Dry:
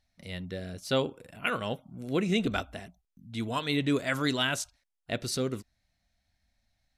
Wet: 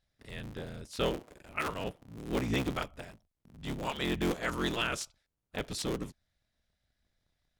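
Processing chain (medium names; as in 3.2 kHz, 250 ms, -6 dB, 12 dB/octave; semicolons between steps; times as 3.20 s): cycle switcher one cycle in 3, inverted; speed mistake 48 kHz file played as 44.1 kHz; trim -4 dB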